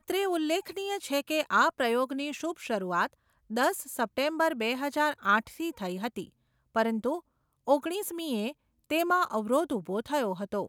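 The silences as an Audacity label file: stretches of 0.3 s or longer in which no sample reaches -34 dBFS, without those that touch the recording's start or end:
3.060000	3.510000	silence
6.220000	6.760000	silence
7.180000	7.680000	silence
8.510000	8.900000	silence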